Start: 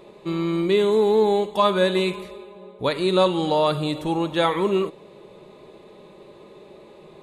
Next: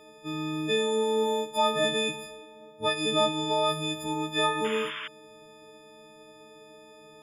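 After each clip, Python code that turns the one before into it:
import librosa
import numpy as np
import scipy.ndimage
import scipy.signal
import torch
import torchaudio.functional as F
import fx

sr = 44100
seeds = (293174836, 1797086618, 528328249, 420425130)

y = fx.freq_snap(x, sr, grid_st=6)
y = fx.hum_notches(y, sr, base_hz=50, count=3)
y = fx.spec_paint(y, sr, seeds[0], shape='noise', start_s=4.64, length_s=0.44, low_hz=960.0, high_hz=3600.0, level_db=-29.0)
y = y * 10.0 ** (-8.0 / 20.0)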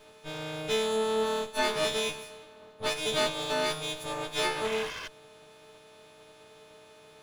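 y = fx.lower_of_two(x, sr, delay_ms=1.9)
y = y * 10.0 ** (-1.0 / 20.0)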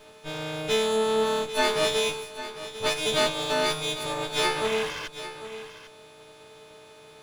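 y = x + 10.0 ** (-13.0 / 20.0) * np.pad(x, (int(798 * sr / 1000.0), 0))[:len(x)]
y = y * 10.0 ** (4.0 / 20.0)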